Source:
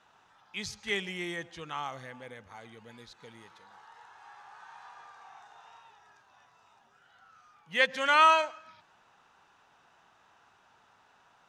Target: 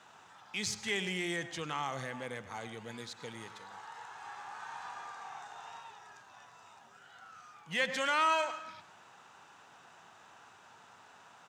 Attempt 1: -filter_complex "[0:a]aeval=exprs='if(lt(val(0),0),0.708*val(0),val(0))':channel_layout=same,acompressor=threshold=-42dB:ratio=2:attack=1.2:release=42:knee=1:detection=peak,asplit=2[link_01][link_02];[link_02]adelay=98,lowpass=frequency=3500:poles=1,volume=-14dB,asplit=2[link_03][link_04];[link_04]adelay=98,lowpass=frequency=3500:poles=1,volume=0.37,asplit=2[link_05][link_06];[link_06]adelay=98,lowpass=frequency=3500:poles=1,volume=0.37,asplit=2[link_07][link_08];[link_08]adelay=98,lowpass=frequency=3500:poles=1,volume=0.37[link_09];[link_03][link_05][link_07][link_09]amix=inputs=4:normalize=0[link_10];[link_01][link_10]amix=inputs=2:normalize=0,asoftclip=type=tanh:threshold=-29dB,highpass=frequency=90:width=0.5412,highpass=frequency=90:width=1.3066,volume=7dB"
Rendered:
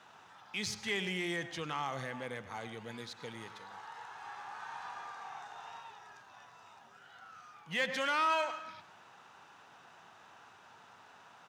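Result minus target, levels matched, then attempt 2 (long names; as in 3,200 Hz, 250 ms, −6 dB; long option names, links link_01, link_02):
soft clipping: distortion +14 dB; 8,000 Hz band −3.0 dB
-filter_complex "[0:a]aeval=exprs='if(lt(val(0),0),0.708*val(0),val(0))':channel_layout=same,acompressor=threshold=-42dB:ratio=2:attack=1.2:release=42:knee=1:detection=peak,equalizer=frequency=7600:width_type=o:width=0.51:gain=7,asplit=2[link_01][link_02];[link_02]adelay=98,lowpass=frequency=3500:poles=1,volume=-14dB,asplit=2[link_03][link_04];[link_04]adelay=98,lowpass=frequency=3500:poles=1,volume=0.37,asplit=2[link_05][link_06];[link_06]adelay=98,lowpass=frequency=3500:poles=1,volume=0.37,asplit=2[link_07][link_08];[link_08]adelay=98,lowpass=frequency=3500:poles=1,volume=0.37[link_09];[link_03][link_05][link_07][link_09]amix=inputs=4:normalize=0[link_10];[link_01][link_10]amix=inputs=2:normalize=0,asoftclip=type=tanh:threshold=-20dB,highpass=frequency=90:width=0.5412,highpass=frequency=90:width=1.3066,volume=7dB"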